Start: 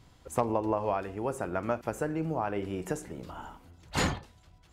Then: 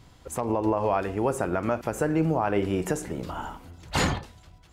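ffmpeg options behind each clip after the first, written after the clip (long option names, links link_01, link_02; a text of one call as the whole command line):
ffmpeg -i in.wav -af "alimiter=limit=-22dB:level=0:latency=1:release=113,dynaudnorm=framelen=200:gausssize=5:maxgain=3.5dB,volume=5dB" out.wav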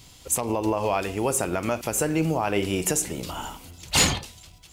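ffmpeg -i in.wav -af "aexciter=amount=2.2:drive=8.6:freq=2300" out.wav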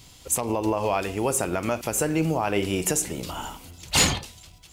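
ffmpeg -i in.wav -af anull out.wav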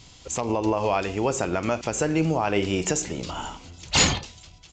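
ffmpeg -i in.wav -af "aresample=16000,aresample=44100,volume=1dB" out.wav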